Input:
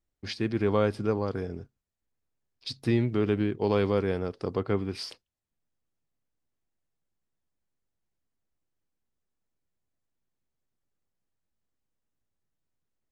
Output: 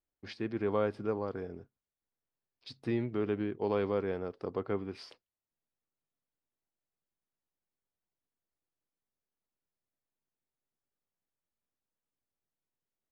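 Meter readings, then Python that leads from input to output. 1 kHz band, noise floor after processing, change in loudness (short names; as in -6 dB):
-5.0 dB, under -85 dBFS, -6.0 dB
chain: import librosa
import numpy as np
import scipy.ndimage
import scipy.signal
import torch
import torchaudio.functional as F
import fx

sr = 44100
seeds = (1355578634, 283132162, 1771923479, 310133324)

y = fx.lowpass(x, sr, hz=1600.0, slope=6)
y = fx.low_shelf(y, sr, hz=200.0, db=-10.5)
y = y * librosa.db_to_amplitude(-3.0)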